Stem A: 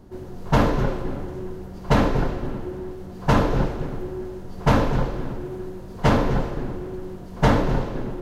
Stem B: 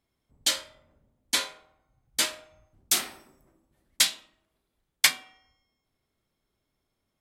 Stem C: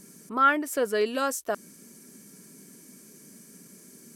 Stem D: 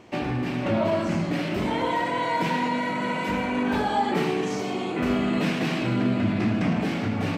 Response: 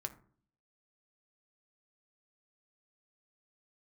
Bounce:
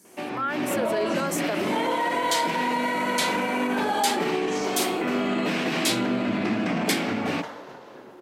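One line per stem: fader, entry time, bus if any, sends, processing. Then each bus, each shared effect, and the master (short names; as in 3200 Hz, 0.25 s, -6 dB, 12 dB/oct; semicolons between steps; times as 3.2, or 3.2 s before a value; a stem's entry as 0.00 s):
-12.0 dB, 0.00 s, bus A, no send, compressor 5:1, threshold -23 dBFS, peak gain reduction 11 dB; low shelf 420 Hz -10.5 dB
-5.0 dB, 1.85 s, no bus, no send, limiter -15.5 dBFS, peak gain reduction 10.5 dB
-4.0 dB, 0.00 s, bus A, no send, dry
-3.0 dB, 0.05 s, bus A, no send, dry
bus A: 0.0 dB, HPF 260 Hz 12 dB/oct; limiter -23 dBFS, peak gain reduction 9.5 dB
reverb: off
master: AGC gain up to 6.5 dB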